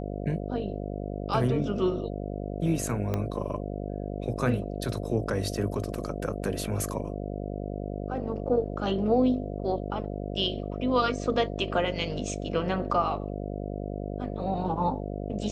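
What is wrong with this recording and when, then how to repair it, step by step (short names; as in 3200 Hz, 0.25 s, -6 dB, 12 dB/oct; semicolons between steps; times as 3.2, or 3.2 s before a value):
buzz 50 Hz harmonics 14 -34 dBFS
3.14 pop -16 dBFS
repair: de-click; de-hum 50 Hz, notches 14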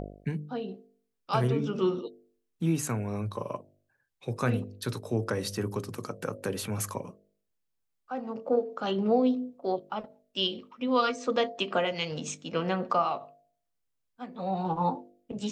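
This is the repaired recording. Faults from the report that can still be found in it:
3.14 pop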